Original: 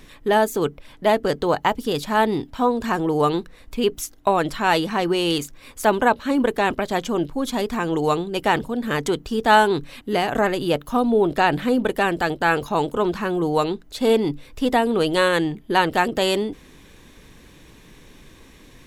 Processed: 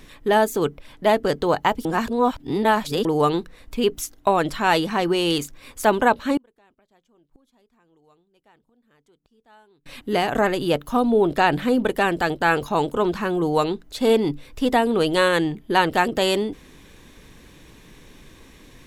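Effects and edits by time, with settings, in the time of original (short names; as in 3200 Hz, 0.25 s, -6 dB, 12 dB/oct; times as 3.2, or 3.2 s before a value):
1.85–3.05 reverse
6.37–9.86 flipped gate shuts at -23 dBFS, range -38 dB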